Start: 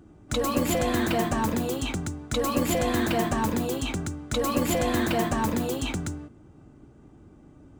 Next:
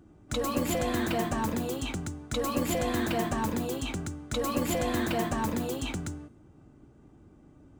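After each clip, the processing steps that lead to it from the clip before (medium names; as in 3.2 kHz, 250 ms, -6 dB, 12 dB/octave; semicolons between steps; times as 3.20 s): de-hum 424.8 Hz, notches 36; trim -4 dB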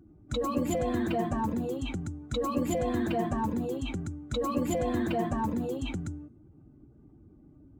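spectral contrast enhancement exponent 1.5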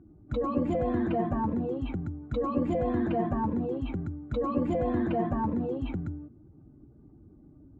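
Bessel low-pass 1.4 kHz, order 2; trim +1.5 dB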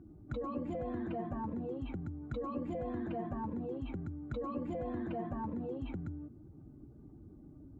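compression 3:1, threshold -39 dBFS, peak gain reduction 12.5 dB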